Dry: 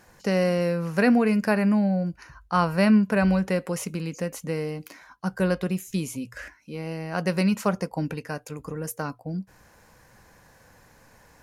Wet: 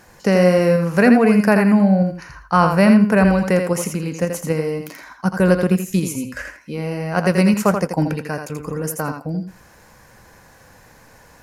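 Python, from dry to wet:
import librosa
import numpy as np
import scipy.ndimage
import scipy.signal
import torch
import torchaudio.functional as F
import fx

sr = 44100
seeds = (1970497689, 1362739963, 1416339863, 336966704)

p1 = fx.dynamic_eq(x, sr, hz=3700.0, q=1.6, threshold_db=-51.0, ratio=4.0, max_db=-6)
p2 = fx.level_steps(p1, sr, step_db=13)
p3 = p1 + (p2 * librosa.db_to_amplitude(0.0))
p4 = fx.echo_thinned(p3, sr, ms=83, feedback_pct=16, hz=210.0, wet_db=-6)
y = p4 * librosa.db_to_amplitude(4.0)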